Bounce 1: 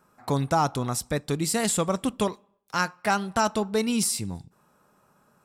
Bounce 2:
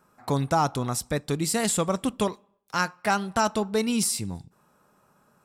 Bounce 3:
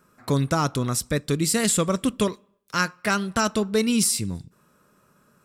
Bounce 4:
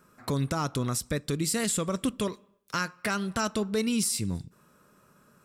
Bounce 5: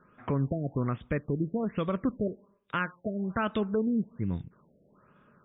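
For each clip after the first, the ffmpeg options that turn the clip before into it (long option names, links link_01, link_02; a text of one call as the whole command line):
ffmpeg -i in.wav -af anull out.wav
ffmpeg -i in.wav -af "equalizer=frequency=800:width_type=o:width=0.5:gain=-12.5,volume=4dB" out.wav
ffmpeg -i in.wav -af "alimiter=limit=-18dB:level=0:latency=1:release=208" out.wav
ffmpeg -i in.wav -af "afftfilt=real='re*lt(b*sr/1024,690*pow(3800/690,0.5+0.5*sin(2*PI*1.2*pts/sr)))':imag='im*lt(b*sr/1024,690*pow(3800/690,0.5+0.5*sin(2*PI*1.2*pts/sr)))':win_size=1024:overlap=0.75" out.wav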